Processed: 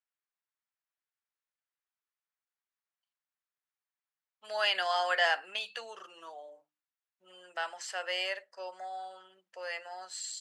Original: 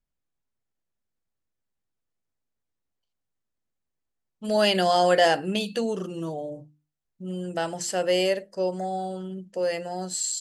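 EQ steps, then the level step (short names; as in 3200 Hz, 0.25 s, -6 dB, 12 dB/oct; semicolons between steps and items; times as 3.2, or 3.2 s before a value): HPF 990 Hz 12 dB/oct; band-pass 1400 Hz, Q 0.74; 0.0 dB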